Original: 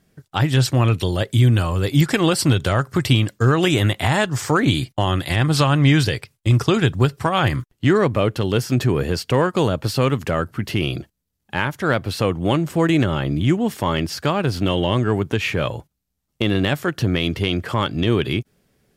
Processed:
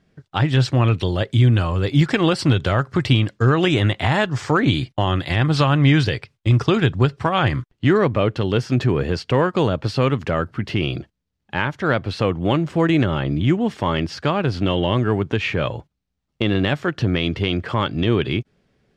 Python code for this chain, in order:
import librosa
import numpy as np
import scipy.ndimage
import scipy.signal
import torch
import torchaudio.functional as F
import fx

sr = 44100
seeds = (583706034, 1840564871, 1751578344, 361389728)

y = scipy.signal.sosfilt(scipy.signal.butter(2, 4400.0, 'lowpass', fs=sr, output='sos'), x)